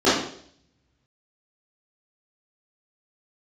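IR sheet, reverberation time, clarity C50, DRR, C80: 0.60 s, 2.0 dB, -13.5 dB, 7.0 dB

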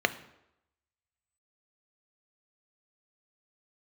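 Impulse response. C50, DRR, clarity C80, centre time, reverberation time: 16.0 dB, 10.0 dB, 18.5 dB, 5 ms, 0.85 s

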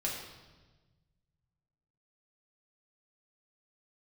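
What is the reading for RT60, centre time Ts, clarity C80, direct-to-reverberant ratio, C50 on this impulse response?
1.3 s, 54 ms, 5.0 dB, -4.0 dB, 3.0 dB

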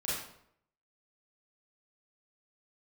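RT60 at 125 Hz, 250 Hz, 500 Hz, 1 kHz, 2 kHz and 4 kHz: 0.75 s, 0.70 s, 0.75 s, 0.70 s, 0.60 s, 0.50 s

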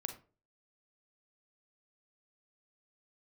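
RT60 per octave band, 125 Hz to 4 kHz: 0.50 s, 0.45 s, 0.45 s, 0.35 s, 0.30 s, 0.20 s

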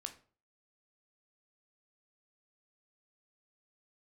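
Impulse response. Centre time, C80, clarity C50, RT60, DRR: 8 ms, 18.0 dB, 13.0 dB, 0.40 s, 5.5 dB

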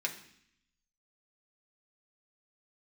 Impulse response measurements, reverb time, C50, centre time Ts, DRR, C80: 0.65 s, 11.0 dB, 13 ms, -0.5 dB, 14.0 dB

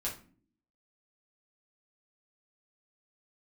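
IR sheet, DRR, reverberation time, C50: -5.5 dB, 0.45 s, 9.0 dB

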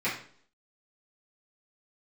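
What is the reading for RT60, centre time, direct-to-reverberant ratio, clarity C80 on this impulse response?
0.55 s, 32 ms, -10.5 dB, 10.5 dB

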